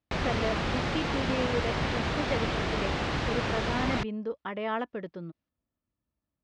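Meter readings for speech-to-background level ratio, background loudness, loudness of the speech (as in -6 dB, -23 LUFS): -4.5 dB, -30.5 LUFS, -35.0 LUFS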